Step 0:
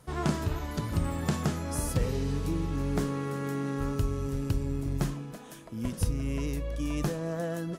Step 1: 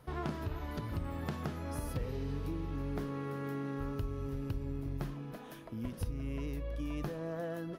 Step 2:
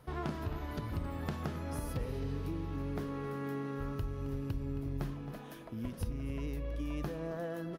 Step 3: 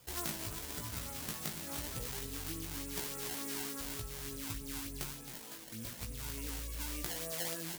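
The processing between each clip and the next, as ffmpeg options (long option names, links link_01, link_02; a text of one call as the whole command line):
ffmpeg -i in.wav -af "equalizer=frequency=7700:width_type=o:width=0.99:gain=-14,acompressor=threshold=-37dB:ratio=2,equalizer=frequency=180:width_type=o:width=0.32:gain=-5.5,volume=-1dB" out.wav
ffmpeg -i in.wav -filter_complex "[0:a]asplit=2[link_01][link_02];[link_02]adelay=268.2,volume=-12dB,highshelf=frequency=4000:gain=-6.04[link_03];[link_01][link_03]amix=inputs=2:normalize=0" out.wav
ffmpeg -i in.wav -af "acrusher=samples=21:mix=1:aa=0.000001:lfo=1:lforange=33.6:lforate=3.4,crystalizer=i=8:c=0,flanger=delay=16.5:depth=2.3:speed=0.97,volume=-5dB" out.wav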